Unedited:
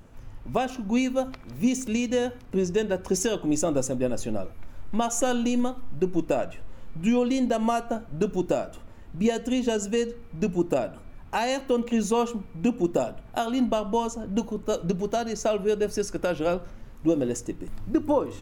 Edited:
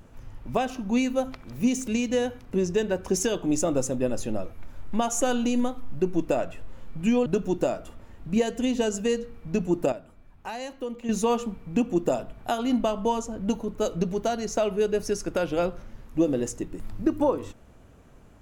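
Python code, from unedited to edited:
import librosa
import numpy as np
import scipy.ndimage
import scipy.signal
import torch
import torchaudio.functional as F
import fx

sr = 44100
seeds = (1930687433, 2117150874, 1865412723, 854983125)

y = fx.edit(x, sr, fx.cut(start_s=7.26, length_s=0.88),
    fx.clip_gain(start_s=10.8, length_s=1.17, db=-9.0), tone=tone)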